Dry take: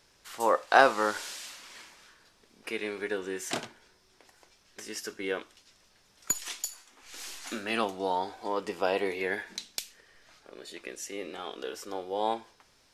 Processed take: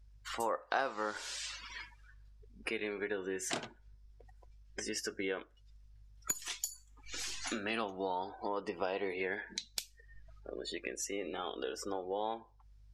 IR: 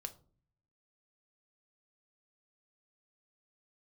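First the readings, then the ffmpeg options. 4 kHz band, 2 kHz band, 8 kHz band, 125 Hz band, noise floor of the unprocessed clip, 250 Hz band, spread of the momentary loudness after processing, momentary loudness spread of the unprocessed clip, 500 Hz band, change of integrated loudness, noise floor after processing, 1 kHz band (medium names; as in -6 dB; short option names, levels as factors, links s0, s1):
-3.5 dB, -8.0 dB, -4.0 dB, -3.0 dB, -65 dBFS, -4.5 dB, 10 LU, 18 LU, -7.0 dB, -7.5 dB, -62 dBFS, -9.5 dB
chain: -af "aeval=exprs='val(0)+0.000891*(sin(2*PI*50*n/s)+sin(2*PI*2*50*n/s)/2+sin(2*PI*3*50*n/s)/3+sin(2*PI*4*50*n/s)/4+sin(2*PI*5*50*n/s)/5)':c=same,afftdn=nr=29:nf=-47,acompressor=threshold=0.00447:ratio=3,volume=2.66"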